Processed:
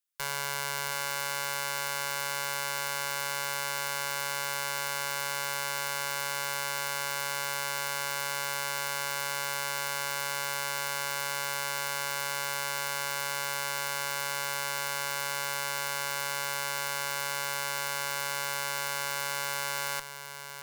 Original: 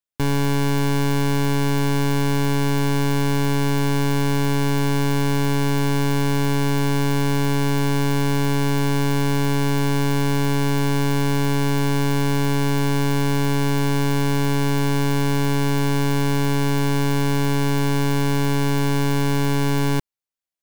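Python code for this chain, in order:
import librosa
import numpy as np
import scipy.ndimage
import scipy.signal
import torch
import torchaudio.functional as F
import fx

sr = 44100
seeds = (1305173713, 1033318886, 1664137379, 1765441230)

y = scipy.signal.sosfilt(scipy.signal.butter(4, 1100.0, 'highpass', fs=sr, output='sos'), x)
y = fx.high_shelf(y, sr, hz=5800.0, db=6.5)
y = fx.clip_asym(y, sr, top_db=-33.5, bottom_db=-14.5)
y = y + 10.0 ** (-9.5 / 20.0) * np.pad(y, (int(720 * sr / 1000.0), 0))[:len(y)]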